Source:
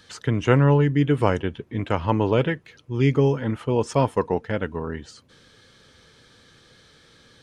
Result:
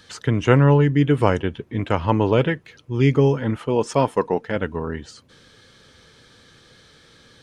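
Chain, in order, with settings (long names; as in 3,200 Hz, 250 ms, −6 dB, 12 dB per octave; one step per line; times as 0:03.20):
0:03.58–0:04.56: parametric band 74 Hz −13.5 dB 1.1 octaves
level +2.5 dB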